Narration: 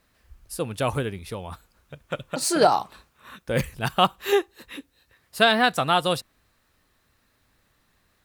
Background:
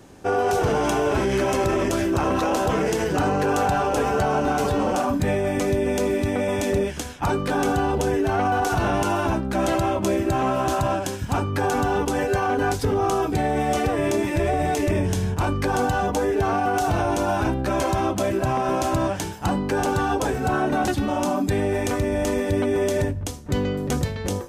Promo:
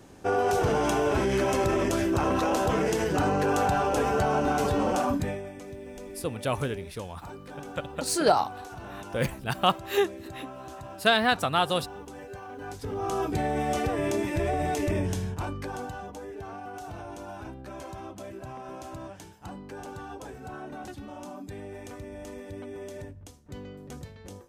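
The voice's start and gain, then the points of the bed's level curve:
5.65 s, −3.5 dB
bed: 0:05.14 −3.5 dB
0:05.55 −19.5 dB
0:12.53 −19.5 dB
0:13.22 −5.5 dB
0:15.05 −5.5 dB
0:16.15 −18 dB

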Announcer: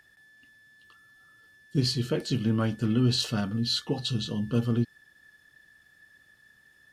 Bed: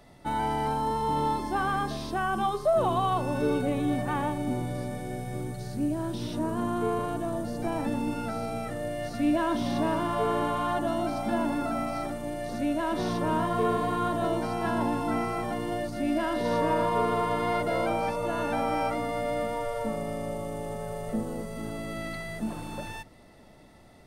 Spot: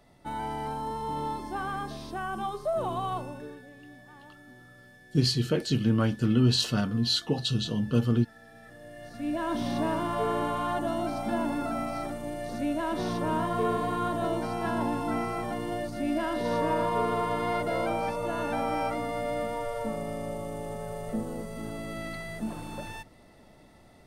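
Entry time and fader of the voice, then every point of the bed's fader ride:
3.40 s, +1.5 dB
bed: 0:03.17 −5.5 dB
0:03.67 −23.5 dB
0:08.35 −23.5 dB
0:09.58 −1.5 dB

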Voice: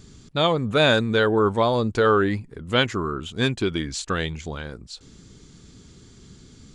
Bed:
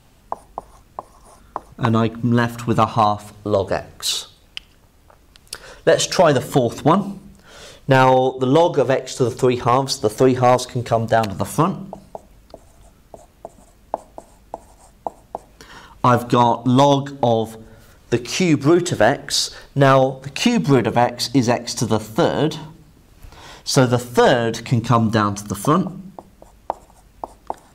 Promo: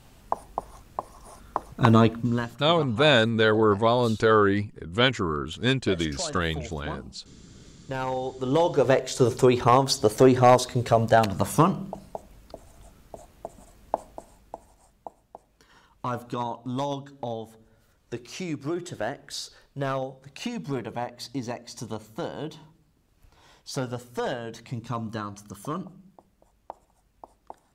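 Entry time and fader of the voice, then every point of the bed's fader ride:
2.25 s, −1.0 dB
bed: 0:02.08 −0.5 dB
0:02.71 −22 dB
0:07.73 −22 dB
0:08.93 −2.5 dB
0:14.03 −2.5 dB
0:15.28 −16 dB

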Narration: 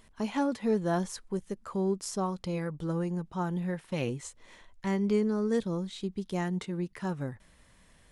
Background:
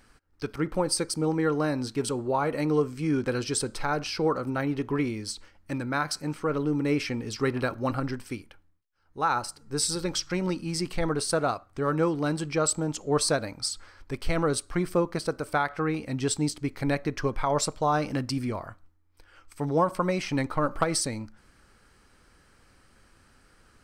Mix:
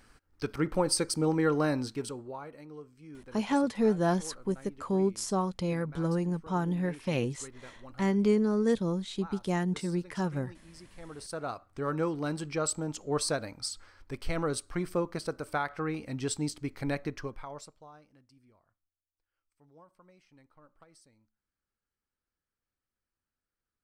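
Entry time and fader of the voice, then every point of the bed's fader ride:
3.15 s, +2.0 dB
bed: 0:01.75 −1 dB
0:02.65 −22 dB
0:10.92 −22 dB
0:11.65 −5.5 dB
0:17.07 −5.5 dB
0:18.11 −33.5 dB

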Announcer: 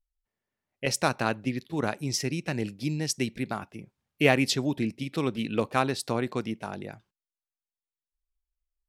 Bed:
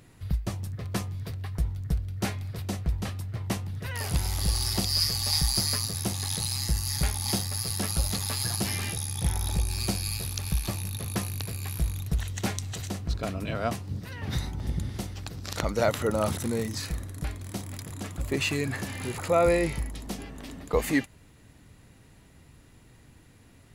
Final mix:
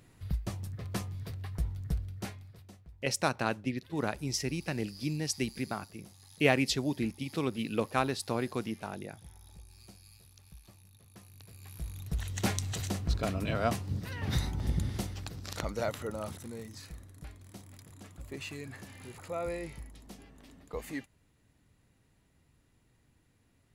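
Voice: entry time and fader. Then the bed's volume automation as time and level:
2.20 s, −4.0 dB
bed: 0:02.03 −5 dB
0:02.88 −25.5 dB
0:11.10 −25.5 dB
0:12.47 −0.5 dB
0:14.94 −0.5 dB
0:16.44 −14 dB

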